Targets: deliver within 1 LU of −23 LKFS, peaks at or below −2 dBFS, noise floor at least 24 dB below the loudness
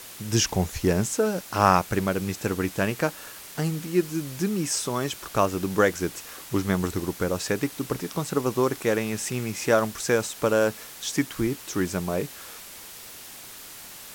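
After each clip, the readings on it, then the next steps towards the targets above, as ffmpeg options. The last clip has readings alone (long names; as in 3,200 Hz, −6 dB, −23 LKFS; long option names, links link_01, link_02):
background noise floor −43 dBFS; target noise floor −50 dBFS; integrated loudness −26.0 LKFS; sample peak −3.5 dBFS; target loudness −23.0 LKFS
→ -af "afftdn=noise_reduction=7:noise_floor=-43"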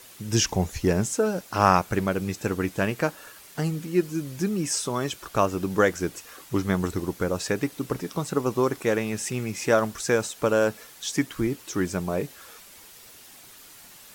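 background noise floor −49 dBFS; target noise floor −50 dBFS
→ -af "afftdn=noise_reduction=6:noise_floor=-49"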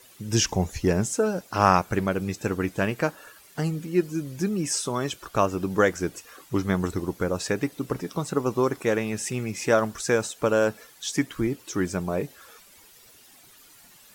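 background noise floor −53 dBFS; integrated loudness −26.0 LKFS; sample peak −3.5 dBFS; target loudness −23.0 LKFS
→ -af "volume=3dB,alimiter=limit=-2dB:level=0:latency=1"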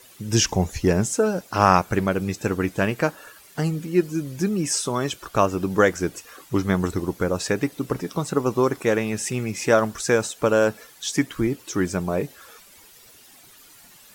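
integrated loudness −23.0 LKFS; sample peak −2.0 dBFS; background noise floor −50 dBFS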